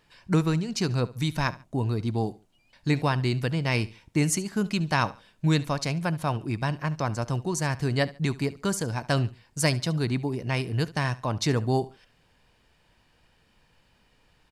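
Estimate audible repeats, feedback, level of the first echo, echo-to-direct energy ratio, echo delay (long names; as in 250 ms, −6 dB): 2, 29%, −19.0 dB, −18.5 dB, 71 ms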